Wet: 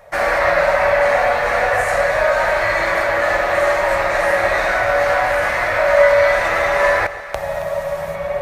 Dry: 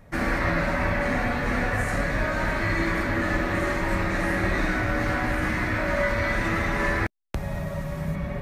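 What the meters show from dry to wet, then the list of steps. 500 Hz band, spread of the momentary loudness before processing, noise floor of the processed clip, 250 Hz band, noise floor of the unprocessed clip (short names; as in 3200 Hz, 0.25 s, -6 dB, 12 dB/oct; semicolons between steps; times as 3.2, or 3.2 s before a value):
+14.5 dB, 6 LU, -27 dBFS, -8.5 dB, -33 dBFS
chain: resonant low shelf 400 Hz -13.5 dB, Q 3; on a send: echo with dull and thin repeats by turns 0.136 s, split 980 Hz, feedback 72%, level -12 dB; on the sum: gain +8 dB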